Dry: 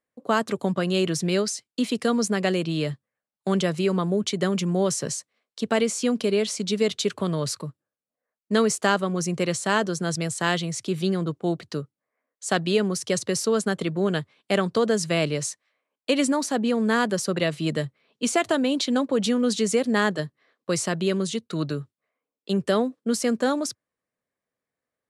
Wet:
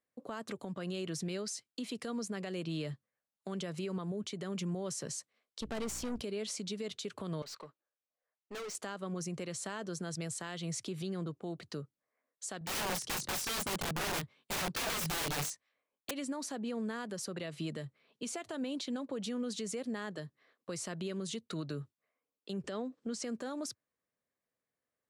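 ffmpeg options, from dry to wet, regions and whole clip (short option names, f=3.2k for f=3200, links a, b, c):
-filter_complex "[0:a]asettb=1/sr,asplit=3[a][b][c];[a]atrim=end=5.614[d];[b]atrim=start=5.61:end=6.22,asetpts=PTS-STARTPTS,afade=t=in:d=0.004:c=qsin,afade=t=out:st=0.606:d=0.004:c=qsin,aeval=exprs='val(0)+0.01*(sin(2*PI*60*n/s)+sin(2*PI*2*60*n/s)/2+sin(2*PI*3*60*n/s)/3+sin(2*PI*4*60*n/s)/4+sin(2*PI*5*60*n/s)/5)':c=same,aeval=exprs='(tanh(22.4*val(0)+0.7)-tanh(0.7))/22.4':c=same[e];[c]atrim=start=6.216[f];[d][e]acrossfade=d=0.004:c1=hsin:c2=qsin[g];[g][f]acrossfade=d=0.004:c1=qsin:c2=hsin,asettb=1/sr,asplit=3[h][i][j];[h]atrim=end=7.424[k];[i]atrim=start=7.42:end=8.75,asetpts=PTS-STARTPTS,afade=t=in:d=0.004:c=qsin,afade=t=out:st=1.326:d=0.004:c=qsin,highpass=480,lowpass=4.8k,aeval=exprs='(tanh(63.1*val(0)+0.1)-tanh(0.1))/63.1':c=same[l];[j]atrim=start=8.746[m];[k][l]acrossfade=d=0.004:c1=hsin:c2=qsin[n];[n][m]acrossfade=d=0.004:c1=qsin:c2=hsin,asettb=1/sr,asplit=3[o][p][q];[o]atrim=end=12.594[r];[p]atrim=start=12.59:end=16.11,asetpts=PTS-STARTPTS,afade=t=in:d=0.004:c=qsin,afade=t=out:st=3.516:d=0.004:c=qsin,lowshelf=f=290:g=5,flanger=delay=20:depth=4.4:speed=1,aeval=exprs='(mod(17.8*val(0)+1,2)-1)/17.8':c=same[s];[q]atrim=start=16.106[t];[r][s]acrossfade=d=0.004:c1=hsin:c2=qsin[u];[u][t]acrossfade=d=0.004:c1=qsin:c2=hsin,asettb=1/sr,asplit=3[v][w][x];[v]atrim=end=22.644[y];[w]atrim=start=22.64:end=23.24,asetpts=PTS-STARTPTS,afade=t=in:d=0.004:c=qsin,afade=t=out:st=0.596:d=0.004:c=qsin,lowpass=f=7.9k:w=0.5412,lowpass=f=7.9k:w=1.3066,acompressor=mode=upward:threshold=-34dB:ratio=2.5:attack=3.2:release=140:knee=2.83:detection=peak[z];[x]atrim=start=23.236[aa];[y][z]acrossfade=d=0.004:c1=hsin:c2=qsin[ab];[ab][aa]acrossfade=d=0.004:c1=qsin:c2=hsin,acompressor=threshold=-27dB:ratio=4,alimiter=level_in=1.5dB:limit=-24dB:level=0:latency=1:release=132,volume=-1.5dB,volume=-4.5dB"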